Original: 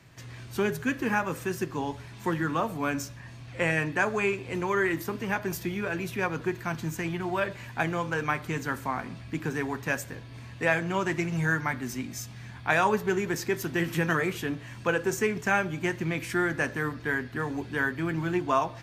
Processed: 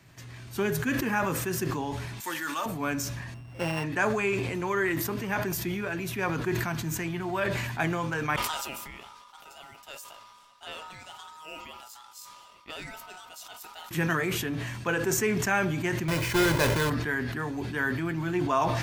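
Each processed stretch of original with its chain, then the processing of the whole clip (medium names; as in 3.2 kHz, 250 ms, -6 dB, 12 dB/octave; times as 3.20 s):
2.20–2.66 s: high-pass 1.3 kHz 6 dB/octave + treble shelf 3.8 kHz +11 dB + comb 3.4 ms, depth 37%
3.34–3.84 s: sorted samples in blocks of 16 samples + low-pass 1.6 kHz 6 dB/octave
8.36–13.91 s: amplifier tone stack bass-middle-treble 5-5-5 + ring modulator 1.1 kHz
16.08–16.90 s: square wave that keeps the level + treble shelf 5.7 kHz -6.5 dB + comb 2 ms, depth 56%
whole clip: treble shelf 9.3 kHz +5 dB; band-stop 490 Hz, Q 12; decay stretcher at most 29 dB/s; trim -1.5 dB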